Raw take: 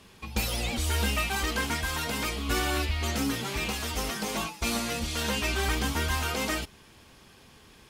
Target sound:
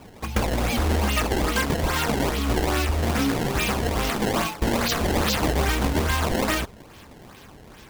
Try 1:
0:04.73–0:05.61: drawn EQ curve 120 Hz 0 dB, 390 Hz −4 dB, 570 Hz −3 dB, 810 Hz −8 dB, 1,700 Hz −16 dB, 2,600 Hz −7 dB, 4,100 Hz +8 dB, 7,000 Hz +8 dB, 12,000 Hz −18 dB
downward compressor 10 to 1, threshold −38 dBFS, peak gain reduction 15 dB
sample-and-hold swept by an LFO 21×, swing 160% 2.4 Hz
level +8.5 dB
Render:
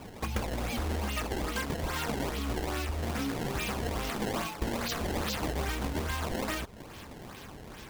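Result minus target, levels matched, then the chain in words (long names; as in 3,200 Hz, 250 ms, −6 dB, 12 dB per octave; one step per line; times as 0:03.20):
downward compressor: peak gain reduction +10.5 dB
0:04.73–0:05.61: drawn EQ curve 120 Hz 0 dB, 390 Hz −4 dB, 570 Hz −3 dB, 810 Hz −8 dB, 1,700 Hz −16 dB, 2,600 Hz −7 dB, 4,100 Hz +8 dB, 7,000 Hz +8 dB, 12,000 Hz −18 dB
downward compressor 10 to 1, threshold −26.5 dBFS, peak gain reduction 5 dB
sample-and-hold swept by an LFO 21×, swing 160% 2.4 Hz
level +8.5 dB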